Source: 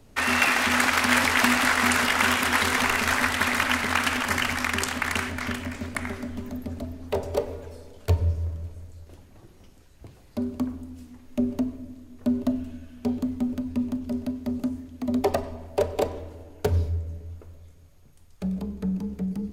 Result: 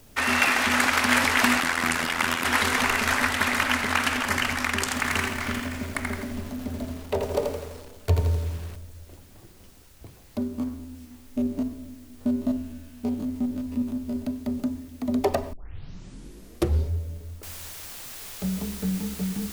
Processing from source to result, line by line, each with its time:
1.60–2.45 s: AM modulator 84 Hz, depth 65%
4.83–8.76 s: bit-crushed delay 83 ms, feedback 55%, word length 7-bit, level -4 dB
10.43–14.16 s: spectrogram pixelated in time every 50 ms
15.53 s: tape start 1.36 s
17.43 s: noise floor step -58 dB -40 dB

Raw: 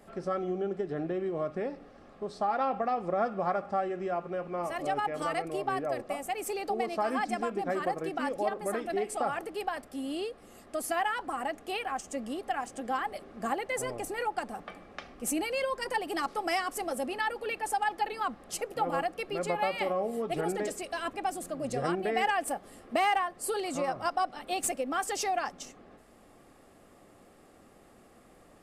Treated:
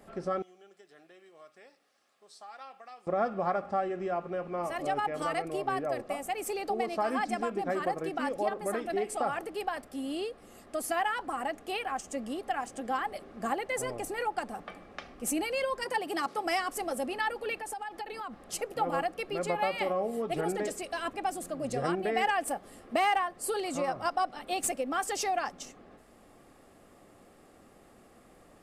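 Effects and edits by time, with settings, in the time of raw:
0.42–3.07 s: differentiator
15.83–16.45 s: high-pass 81 Hz 24 dB/octave
17.59–18.47 s: compression, threshold -35 dBFS

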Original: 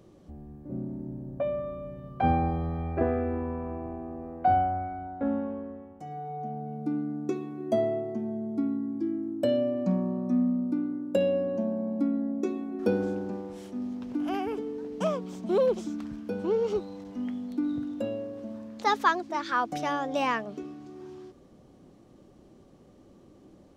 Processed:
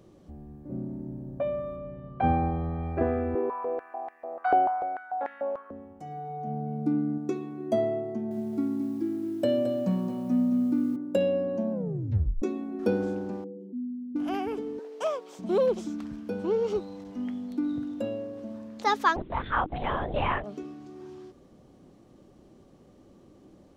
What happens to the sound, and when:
1.76–2.83 s: low-pass 3 kHz
3.35–5.71 s: step-sequenced high-pass 6.8 Hz 400–1900 Hz
6.47–7.18 s: bass shelf 370 Hz +6 dB
8.09–10.96 s: bit-crushed delay 219 ms, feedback 55%, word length 9-bit, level -8 dB
11.72 s: tape stop 0.70 s
13.44–14.16 s: spectral contrast enhancement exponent 2.6
14.79–15.39 s: high-pass 420 Hz 24 dB/octave
19.16–20.44 s: LPC vocoder at 8 kHz whisper

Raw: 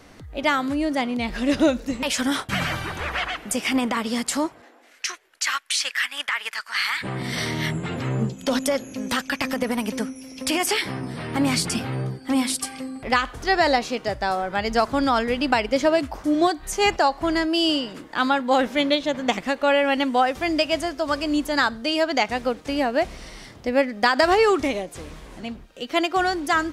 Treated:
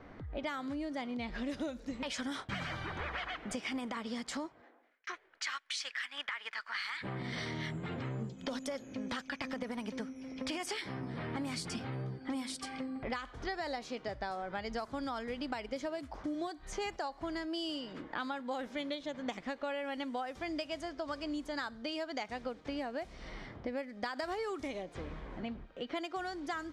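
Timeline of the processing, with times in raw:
4.26–5.07 s: fade out
whole clip: level-controlled noise filter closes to 1.9 kHz, open at -15.5 dBFS; band-stop 2.7 kHz, Q 14; compression 6:1, threshold -33 dBFS; trim -3.5 dB

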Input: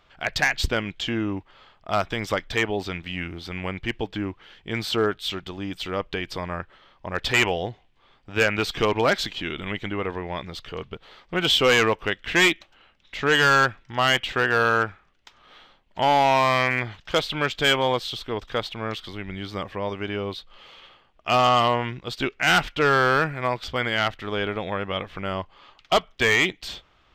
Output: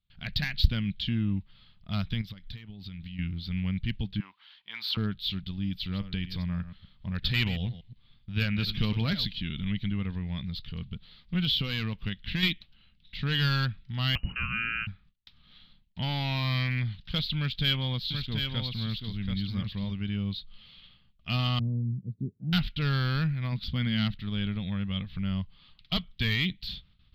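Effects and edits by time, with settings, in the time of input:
2.21–3.19 s: compression 10:1, threshold -36 dBFS
4.20–4.97 s: resonant high-pass 970 Hz, resonance Q 3
5.77–9.26 s: chunks repeated in reverse 120 ms, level -12 dB
11.40–12.43 s: compression 4:1, threshold -20 dBFS
14.15–14.87 s: frequency inversion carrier 2.9 kHz
17.37–19.91 s: delay 733 ms -5.5 dB
21.59–22.53 s: elliptic band-pass 100–440 Hz, stop band 60 dB
23.52–24.20 s: peaking EQ 210 Hz +7.5 dB 0.87 oct
whole clip: resonant high shelf 6.2 kHz -12.5 dB, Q 3; gate with hold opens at -48 dBFS; FFT filter 200 Hz 0 dB, 350 Hz -23 dB, 760 Hz -27 dB, 3.9 kHz -11 dB, 6.3 kHz -21 dB, 12 kHz +3 dB; trim +4.5 dB

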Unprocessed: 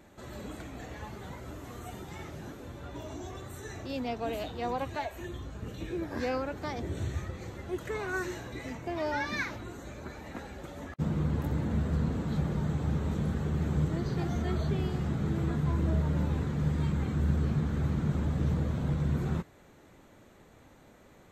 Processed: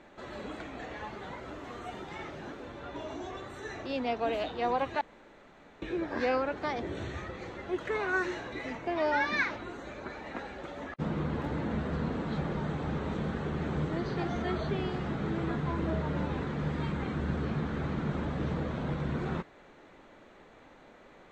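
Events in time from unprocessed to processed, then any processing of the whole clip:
5.01–5.82 s: room tone
whole clip: low-pass 3.7 kHz 12 dB/octave; peaking EQ 87 Hz -13.5 dB 2.4 oct; trim +5 dB

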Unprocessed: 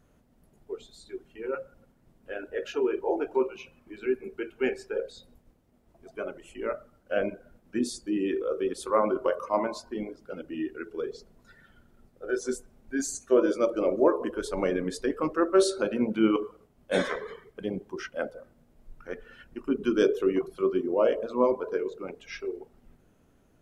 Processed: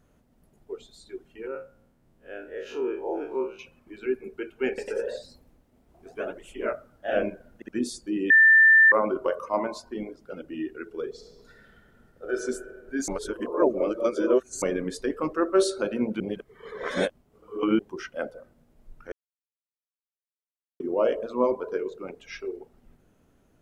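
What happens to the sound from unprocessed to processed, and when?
1.47–3.59 s: spectral blur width 87 ms
4.68–7.76 s: ever faster or slower copies 98 ms, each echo +1 st, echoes 2
8.30–8.92 s: bleep 1.78 kHz -12 dBFS
11.11–12.33 s: reverb throw, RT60 1.9 s, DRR 1 dB
13.08–14.62 s: reverse
16.20–17.79 s: reverse
19.12–20.80 s: mute

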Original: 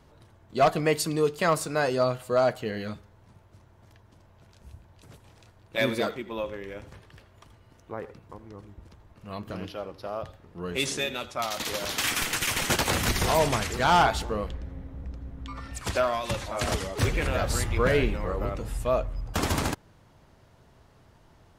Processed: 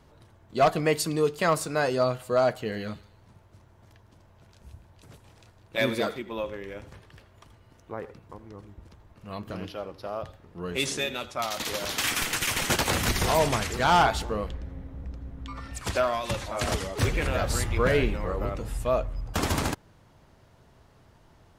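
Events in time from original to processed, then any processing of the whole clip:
2.54–6.19 s: feedback echo behind a high-pass 156 ms, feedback 30%, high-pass 2.9 kHz, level -14 dB

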